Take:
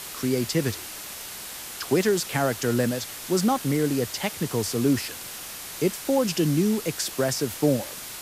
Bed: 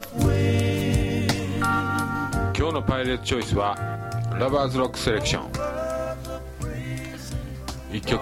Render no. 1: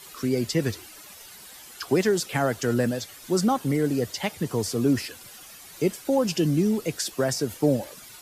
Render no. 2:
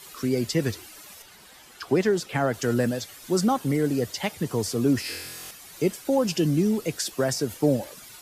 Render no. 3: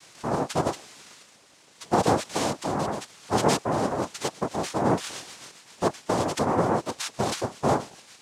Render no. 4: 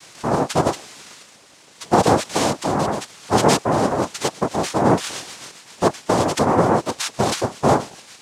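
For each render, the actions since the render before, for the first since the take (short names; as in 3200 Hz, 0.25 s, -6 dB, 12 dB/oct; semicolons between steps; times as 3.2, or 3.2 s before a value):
denoiser 12 dB, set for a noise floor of -38 dBFS
1.22–2.54 high shelf 5100 Hz -9.5 dB; 5.03–5.51 flutter echo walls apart 4 m, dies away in 1 s
rotary speaker horn 0.8 Hz, later 7.5 Hz, at 3.39; noise vocoder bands 2
gain +7 dB; limiter -3 dBFS, peak gain reduction 2.5 dB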